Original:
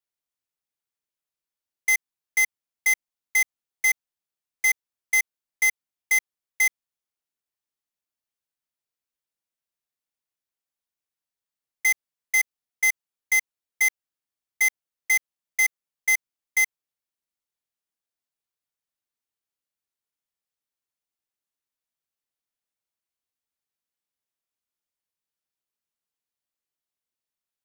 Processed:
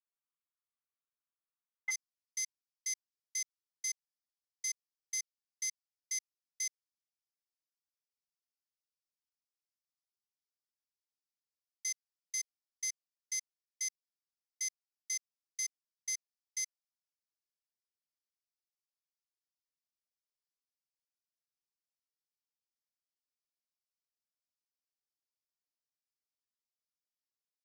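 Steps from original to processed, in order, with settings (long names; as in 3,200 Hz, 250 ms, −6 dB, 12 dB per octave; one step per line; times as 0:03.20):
four-pole ladder band-pass 1,300 Hz, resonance 60%, from 0:01.90 5,600 Hz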